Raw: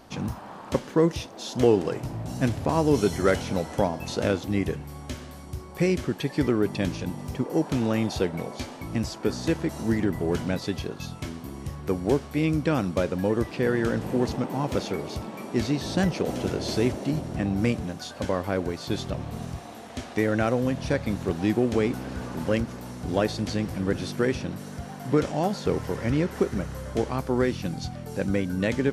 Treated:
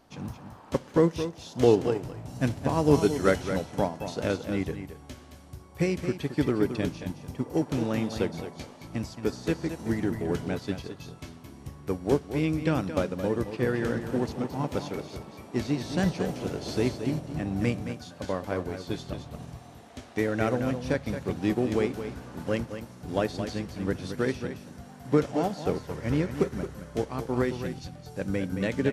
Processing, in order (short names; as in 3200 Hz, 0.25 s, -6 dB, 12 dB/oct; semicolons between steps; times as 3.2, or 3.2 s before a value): echo 0.221 s -7 dB; reverb RT60 0.85 s, pre-delay 7 ms, DRR 18 dB; upward expander 1.5:1, over -35 dBFS